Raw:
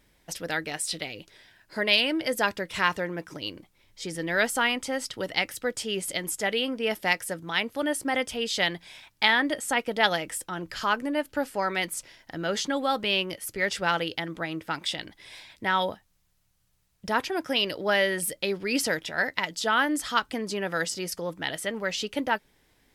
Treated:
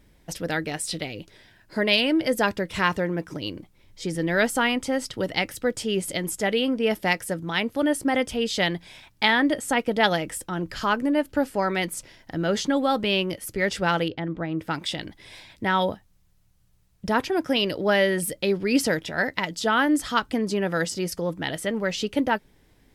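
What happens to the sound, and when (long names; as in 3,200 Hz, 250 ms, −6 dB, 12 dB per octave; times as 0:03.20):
0:14.08–0:14.59: head-to-tape spacing loss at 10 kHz 28 dB
whole clip: low-shelf EQ 490 Hz +9.5 dB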